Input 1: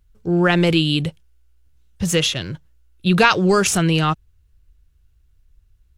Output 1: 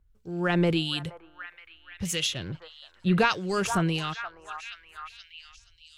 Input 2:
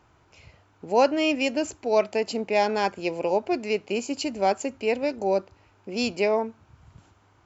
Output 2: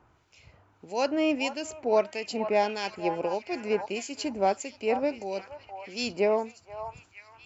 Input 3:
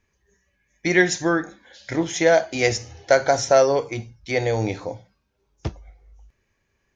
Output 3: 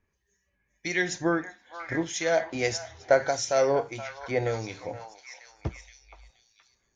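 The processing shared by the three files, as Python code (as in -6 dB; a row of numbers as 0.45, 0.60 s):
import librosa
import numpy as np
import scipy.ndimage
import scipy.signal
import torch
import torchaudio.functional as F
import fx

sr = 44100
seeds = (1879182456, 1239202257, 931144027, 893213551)

y = fx.echo_stepped(x, sr, ms=473, hz=990.0, octaves=0.7, feedback_pct=70, wet_db=-6.5)
y = fx.harmonic_tremolo(y, sr, hz=1.6, depth_pct=70, crossover_hz=2000.0)
y = y * 10.0 ** (-30 / 20.0) / np.sqrt(np.mean(np.square(y)))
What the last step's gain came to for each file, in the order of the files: -6.0, -0.5, -4.0 dB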